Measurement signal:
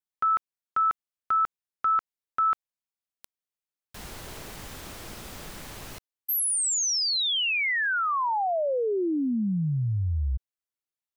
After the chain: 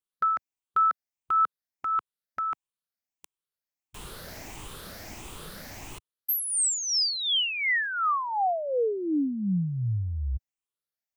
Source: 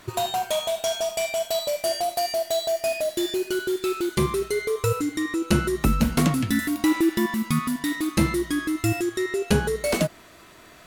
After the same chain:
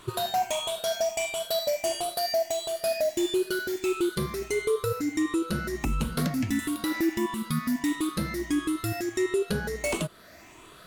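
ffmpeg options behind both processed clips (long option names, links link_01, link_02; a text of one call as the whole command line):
ffmpeg -i in.wav -af "afftfilt=real='re*pow(10,9/40*sin(2*PI*(0.66*log(max(b,1)*sr/1024/100)/log(2)-(1.5)*(pts-256)/sr)))':imag='im*pow(10,9/40*sin(2*PI*(0.66*log(max(b,1)*sr/1024/100)/log(2)-(1.5)*(pts-256)/sr)))':win_size=1024:overlap=0.75,alimiter=limit=-15.5dB:level=0:latency=1:release=315,volume=-2dB" out.wav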